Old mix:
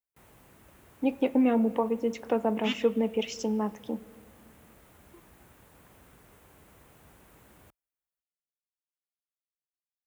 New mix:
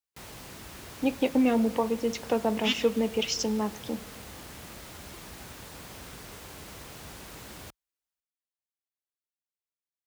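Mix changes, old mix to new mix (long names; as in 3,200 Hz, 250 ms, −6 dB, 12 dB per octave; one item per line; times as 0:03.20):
background +11.0 dB
master: add parametric band 4,800 Hz +12 dB 1.3 octaves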